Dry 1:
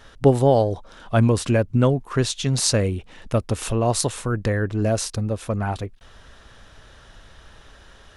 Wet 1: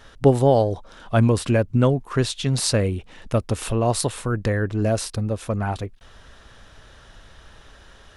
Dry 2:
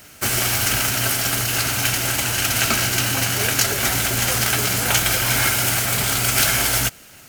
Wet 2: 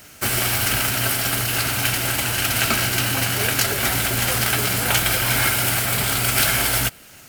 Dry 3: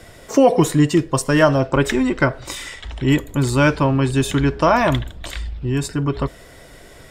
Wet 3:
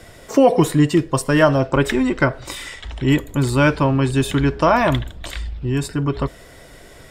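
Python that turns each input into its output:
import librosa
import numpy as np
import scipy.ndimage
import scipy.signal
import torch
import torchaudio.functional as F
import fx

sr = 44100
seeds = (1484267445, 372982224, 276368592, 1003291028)

y = fx.dynamic_eq(x, sr, hz=6400.0, q=2.5, threshold_db=-40.0, ratio=4.0, max_db=-6)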